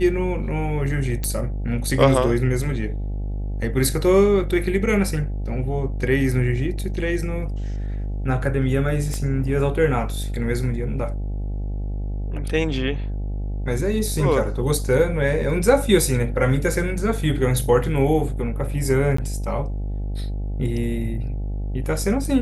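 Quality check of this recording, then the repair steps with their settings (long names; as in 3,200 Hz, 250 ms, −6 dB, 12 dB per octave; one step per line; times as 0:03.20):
mains buzz 50 Hz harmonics 17 −26 dBFS
0:01.24: click
0:09.14: click −16 dBFS
0:19.17–0:19.18: drop-out 14 ms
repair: click removal
hum removal 50 Hz, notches 17
repair the gap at 0:19.17, 14 ms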